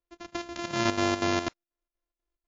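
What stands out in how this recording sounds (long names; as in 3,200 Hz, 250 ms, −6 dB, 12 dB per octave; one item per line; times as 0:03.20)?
a buzz of ramps at a fixed pitch in blocks of 128 samples
chopped level 4.1 Hz, depth 65%, duty 70%
MP3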